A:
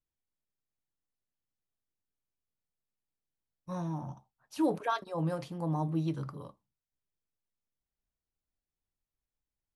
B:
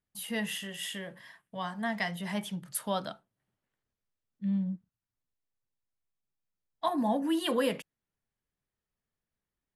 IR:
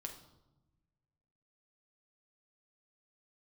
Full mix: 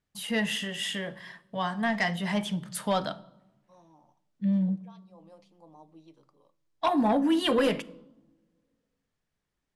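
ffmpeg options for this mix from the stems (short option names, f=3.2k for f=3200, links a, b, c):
-filter_complex "[0:a]highpass=390,equalizer=f=1.5k:t=o:w=0.63:g=-12.5,volume=-15.5dB,asplit=2[a][b];[b]volume=-12.5dB[c];[1:a]aeval=exprs='0.15*sin(PI/2*1.58*val(0)/0.15)':c=same,volume=-4dB,asplit=3[d][e][f];[e]volume=-5dB[g];[f]apad=whole_len=430164[h];[a][h]sidechaincompress=threshold=-39dB:ratio=8:attack=16:release=665[i];[2:a]atrim=start_sample=2205[j];[c][g]amix=inputs=2:normalize=0[k];[k][j]afir=irnorm=-1:irlink=0[l];[i][d][l]amix=inputs=3:normalize=0,lowpass=7.6k"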